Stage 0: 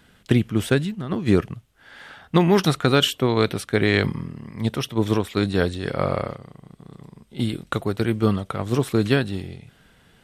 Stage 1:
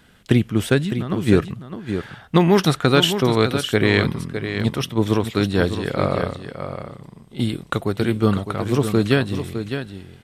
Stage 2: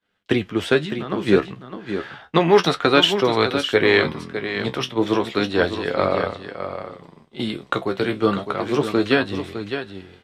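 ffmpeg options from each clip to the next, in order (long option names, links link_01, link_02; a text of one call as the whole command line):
ffmpeg -i in.wav -af "aecho=1:1:608:0.355,volume=2dB" out.wav
ffmpeg -i in.wav -filter_complex "[0:a]flanger=delay=10:depth=5.6:regen=45:speed=0.31:shape=sinusoidal,agate=range=-33dB:threshold=-44dB:ratio=3:detection=peak,acrossover=split=280 5700:gain=0.251 1 0.178[link_01][link_02][link_03];[link_01][link_02][link_03]amix=inputs=3:normalize=0,volume=6.5dB" out.wav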